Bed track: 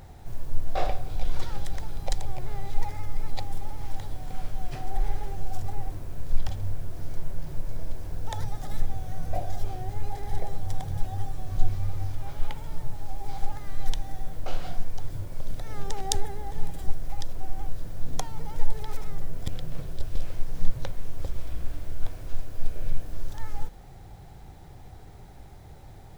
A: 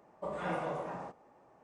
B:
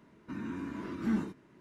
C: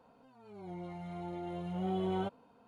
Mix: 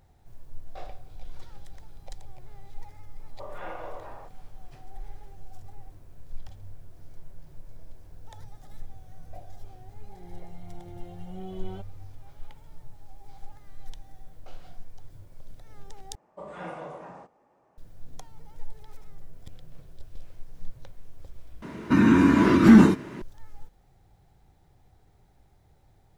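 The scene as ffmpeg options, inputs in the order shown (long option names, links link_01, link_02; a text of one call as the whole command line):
ffmpeg -i bed.wav -i cue0.wav -i cue1.wav -i cue2.wav -filter_complex "[1:a]asplit=2[link_01][link_02];[0:a]volume=-14dB[link_03];[link_01]highpass=370,lowpass=4700[link_04];[3:a]equalizer=frequency=1100:width_type=o:width=1.1:gain=-6[link_05];[2:a]alimiter=level_in=24.5dB:limit=-1dB:release=50:level=0:latency=1[link_06];[link_03]asplit=3[link_07][link_08][link_09];[link_07]atrim=end=16.154[link_10];[link_02]atrim=end=1.63,asetpts=PTS-STARTPTS,volume=-3dB[link_11];[link_08]atrim=start=17.776:end=21.624[link_12];[link_06]atrim=end=1.6,asetpts=PTS-STARTPTS,volume=-3.5dB[link_13];[link_09]atrim=start=23.216[link_14];[link_04]atrim=end=1.63,asetpts=PTS-STARTPTS,volume=-2.5dB,afade=type=in:duration=0.004:curve=hsin,afade=type=out:start_time=1.626:duration=0.004:curve=hsin,adelay=139797S[link_15];[link_05]atrim=end=2.67,asetpts=PTS-STARTPTS,volume=-5dB,afade=type=in:duration=0.004:curve=hsin,afade=type=out:start_time=2.666:duration=0.004:curve=hsin,adelay=9530[link_16];[link_10][link_11]acrossfade=duration=0.004:curve1=hsin:curve2=hsin[link_17];[link_17][link_12]acrossfade=duration=0.004:curve1=hsin:curve2=hsin[link_18];[link_18][link_13]acrossfade=duration=0.004:curve1=hsin:curve2=hsin[link_19];[link_19][link_14]acrossfade=duration=0.004:curve1=hsin:curve2=hsin[link_20];[link_20][link_15][link_16]amix=inputs=3:normalize=0" out.wav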